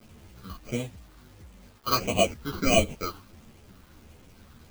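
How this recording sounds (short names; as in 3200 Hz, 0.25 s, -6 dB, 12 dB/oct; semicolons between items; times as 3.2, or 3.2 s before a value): aliases and images of a low sample rate 1800 Hz, jitter 0%; phasing stages 6, 1.5 Hz, lowest notch 610–1400 Hz; a quantiser's noise floor 10-bit, dither none; a shimmering, thickened sound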